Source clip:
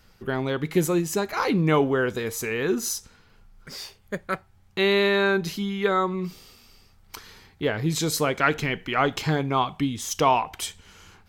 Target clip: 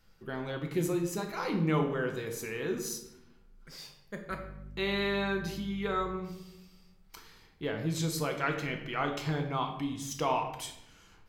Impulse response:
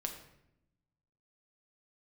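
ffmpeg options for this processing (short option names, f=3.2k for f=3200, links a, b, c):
-filter_complex "[0:a]asettb=1/sr,asplit=3[a][b][c];[a]atrim=end=4.304[d];[b]atrim=start=4.3:end=6,asetpts=PTS-STARTPTS,afade=t=in:d=0.004:c=qsin,afade=t=out:st=1.696:d=0.004:c=qsin,aeval=exprs='val(0)+0.02*(sin(2*PI*50*n/s)+sin(2*PI*2*50*n/s)/2+sin(2*PI*3*50*n/s)/3+sin(2*PI*4*50*n/s)/4+sin(2*PI*5*50*n/s)/5)':c=same[e];[c]atrim=start=5.996[f];[d][e]acrossfade=d=0.004:c1=hsin:c2=qsin[g];[g][f]acrossfade=d=0.004:c1=qsin:c2=hsin[h];[1:a]atrim=start_sample=2205[i];[h][i]afir=irnorm=-1:irlink=0,volume=-9dB"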